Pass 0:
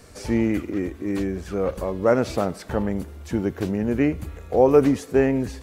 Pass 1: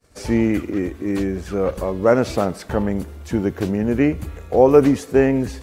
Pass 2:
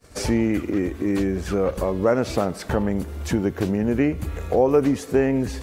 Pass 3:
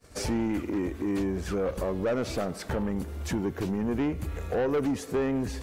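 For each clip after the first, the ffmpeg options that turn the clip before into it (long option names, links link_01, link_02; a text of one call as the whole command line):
ffmpeg -i in.wav -af "agate=range=-33dB:threshold=-38dB:ratio=3:detection=peak,volume=3.5dB" out.wav
ffmpeg -i in.wav -af "acompressor=threshold=-33dB:ratio=2,volume=7.5dB" out.wav
ffmpeg -i in.wav -af "asoftclip=type=tanh:threshold=-18dB,volume=-4dB" out.wav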